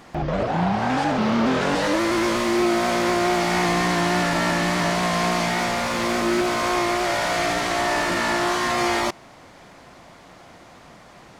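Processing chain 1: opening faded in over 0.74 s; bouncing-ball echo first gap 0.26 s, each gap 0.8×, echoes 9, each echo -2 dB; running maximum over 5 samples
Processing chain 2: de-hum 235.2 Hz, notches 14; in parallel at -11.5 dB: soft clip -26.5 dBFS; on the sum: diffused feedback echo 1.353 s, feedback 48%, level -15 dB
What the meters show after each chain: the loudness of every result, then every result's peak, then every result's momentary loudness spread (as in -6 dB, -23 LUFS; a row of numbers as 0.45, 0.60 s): -18.0, -20.5 LUFS; -4.0, -10.0 dBFS; 7, 15 LU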